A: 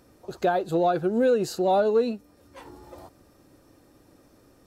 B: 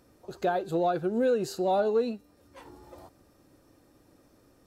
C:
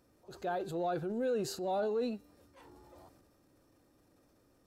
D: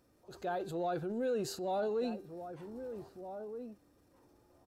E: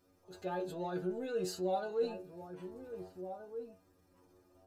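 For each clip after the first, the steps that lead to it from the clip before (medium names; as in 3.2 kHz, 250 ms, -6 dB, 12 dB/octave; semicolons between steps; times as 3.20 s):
de-hum 394.2 Hz, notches 32; trim -4 dB
transient shaper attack -4 dB, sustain +6 dB; trim -7.5 dB
echo from a far wall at 270 m, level -9 dB; trim -1 dB
inharmonic resonator 90 Hz, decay 0.3 s, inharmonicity 0.002; trim +8 dB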